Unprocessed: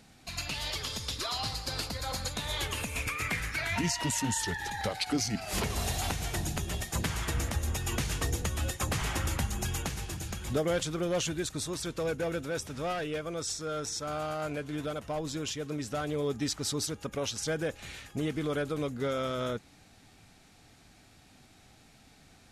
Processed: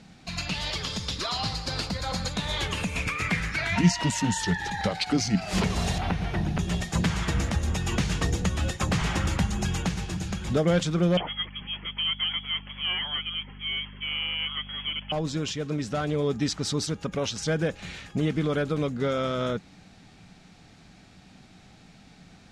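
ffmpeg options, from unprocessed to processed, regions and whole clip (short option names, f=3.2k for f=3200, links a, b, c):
-filter_complex "[0:a]asettb=1/sr,asplit=3[a][b][c];[a]atrim=end=5.984[d];[b]atrim=start=5.98:end=6.59,asetpts=PTS-STARTPTS,afade=t=in:d=0.004:c=qsin,afade=t=out:st=0.606:d=0.004:c=qsin,acrossover=split=2900[e][f];[f]acompressor=threshold=-51dB:ratio=4:attack=1:release=60[g];[e][g]amix=inputs=2:normalize=0,equalizer=f=7.4k:t=o:w=0.27:g=-10.5[h];[c]atrim=start=6.586[i];[d][h]acrossfade=d=0.004:c1=hsin:c2=qsin[j];[j][i]acrossfade=d=0.004:c1=qsin:c2=hsin,asettb=1/sr,asplit=3[k][l][m];[k]atrim=end=11.174[n];[l]atrim=start=11.17:end=15.12,asetpts=PTS-STARTPTS,afade=t=in:d=0.004:c=qsin,afade=t=out:st=3.946:d=0.004:c=qsin,highpass=f=330:w=0.5412,highpass=f=330:w=1.3066,lowpass=f=3.1k:t=q:w=0.5098,lowpass=f=3.1k:t=q:w=0.6013,lowpass=f=3.1k:t=q:w=0.9,lowpass=f=3.1k:t=q:w=2.563,afreqshift=-3600,aeval=exprs='val(0)+0.00355*(sin(2*PI*50*n/s)+sin(2*PI*2*50*n/s)/2+sin(2*PI*3*50*n/s)/3+sin(2*PI*4*50*n/s)/4+sin(2*PI*5*50*n/s)/5)':c=same[o];[m]atrim=start=15.116[p];[n][o]acrossfade=d=0.004:c1=hsin:c2=qsin[q];[q][p]acrossfade=d=0.004:c1=qsin:c2=hsin,lowpass=6.2k,equalizer=f=180:t=o:w=0.37:g=11,volume=4.5dB"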